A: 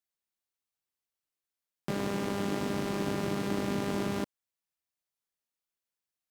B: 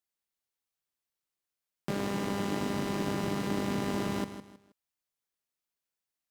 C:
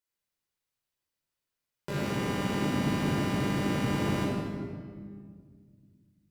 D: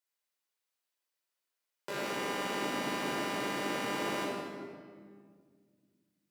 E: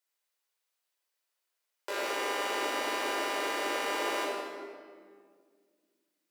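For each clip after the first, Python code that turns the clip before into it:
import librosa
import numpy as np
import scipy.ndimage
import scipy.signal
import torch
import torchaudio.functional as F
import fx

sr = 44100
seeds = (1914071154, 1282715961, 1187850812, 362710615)

y1 = fx.echo_feedback(x, sr, ms=159, feedback_pct=30, wet_db=-11.0)
y2 = fx.room_shoebox(y1, sr, seeds[0], volume_m3=2900.0, walls='mixed', distance_m=4.8)
y2 = y2 * librosa.db_to_amplitude(-4.0)
y3 = scipy.signal.sosfilt(scipy.signal.butter(2, 420.0, 'highpass', fs=sr, output='sos'), y2)
y4 = scipy.signal.sosfilt(scipy.signal.butter(4, 360.0, 'highpass', fs=sr, output='sos'), y3)
y4 = y4 * librosa.db_to_amplitude(3.5)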